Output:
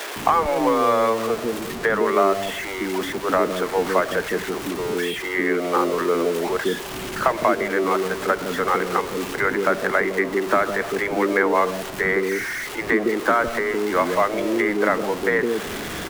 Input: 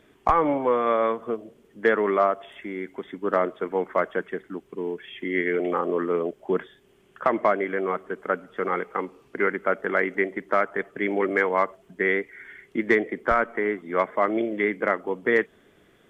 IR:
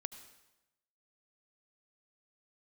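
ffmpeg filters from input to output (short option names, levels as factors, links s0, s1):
-filter_complex "[0:a]aeval=exprs='val(0)+0.5*0.0376*sgn(val(0))':c=same,acrossover=split=260|1800[s0][s1][s2];[s0]acompressor=threshold=0.0112:ratio=4[s3];[s1]acompressor=threshold=0.1:ratio=4[s4];[s2]acompressor=threshold=0.0141:ratio=4[s5];[s3][s4][s5]amix=inputs=3:normalize=0,acrossover=split=430[s6][s7];[s6]adelay=160[s8];[s8][s7]amix=inputs=2:normalize=0,volume=2"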